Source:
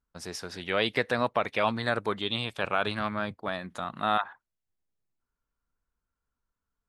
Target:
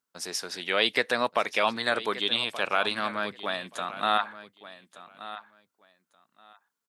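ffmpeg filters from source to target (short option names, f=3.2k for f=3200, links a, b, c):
-af "highpass=240,highshelf=f=2.4k:g=8.5,aecho=1:1:1177|2354:0.178|0.0302"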